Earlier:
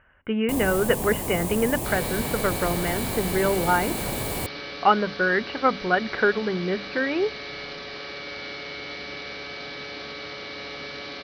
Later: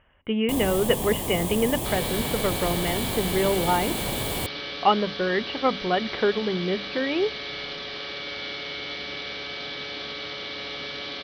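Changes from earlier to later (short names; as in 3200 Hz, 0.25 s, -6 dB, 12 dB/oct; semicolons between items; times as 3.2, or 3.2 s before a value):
speech: add bell 1500 Hz -11.5 dB 0.38 oct; master: add bell 3300 Hz +9.5 dB 0.34 oct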